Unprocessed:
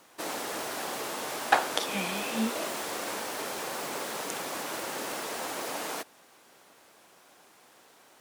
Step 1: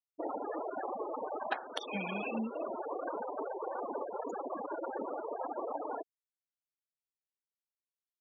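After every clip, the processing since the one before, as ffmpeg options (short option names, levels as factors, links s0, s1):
-af "afftfilt=real='re*gte(hypot(re,im),0.0501)':imag='im*gte(hypot(re,im),0.0501)':win_size=1024:overlap=0.75,acompressor=threshold=0.0158:ratio=16,volume=1.5"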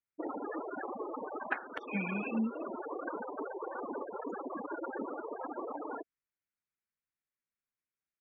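-af "firequalizer=gain_entry='entry(250,0);entry(660,-11);entry(1400,0);entry(2300,0);entry(3500,-23)':delay=0.05:min_phase=1,volume=1.68"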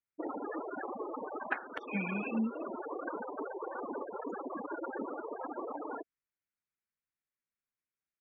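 -af anull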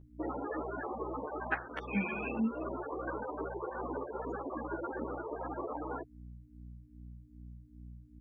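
-filter_complex "[0:a]aeval=exprs='val(0)+0.00316*(sin(2*PI*60*n/s)+sin(2*PI*2*60*n/s)/2+sin(2*PI*3*60*n/s)/3+sin(2*PI*4*60*n/s)/4+sin(2*PI*5*60*n/s)/5)':c=same,asplit=2[s0][s1];[s1]adelay=11.9,afreqshift=2.5[s2];[s0][s2]amix=inputs=2:normalize=1,volume=1.58"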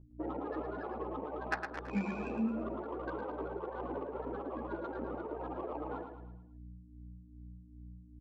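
-filter_complex "[0:a]adynamicsmooth=sensitivity=2.5:basefreq=1100,asplit=2[s0][s1];[s1]aecho=0:1:110|220|330|440|550:0.447|0.201|0.0905|0.0407|0.0183[s2];[s0][s2]amix=inputs=2:normalize=0,volume=0.891"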